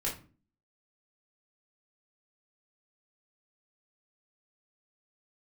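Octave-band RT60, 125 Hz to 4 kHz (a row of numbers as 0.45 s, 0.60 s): 0.50 s, 0.60 s, 0.40 s, 0.35 s, 0.30 s, 0.25 s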